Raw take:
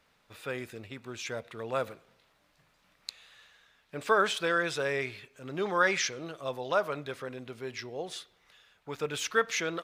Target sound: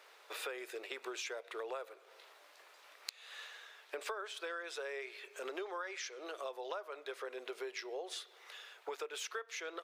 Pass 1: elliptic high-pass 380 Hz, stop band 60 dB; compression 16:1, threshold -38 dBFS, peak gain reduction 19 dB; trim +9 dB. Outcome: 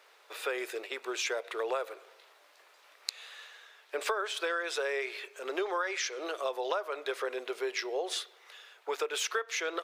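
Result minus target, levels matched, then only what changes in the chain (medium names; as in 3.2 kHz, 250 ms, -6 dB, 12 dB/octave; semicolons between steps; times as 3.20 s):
compression: peak gain reduction -10 dB
change: compression 16:1, threshold -48.5 dBFS, peak gain reduction 28.5 dB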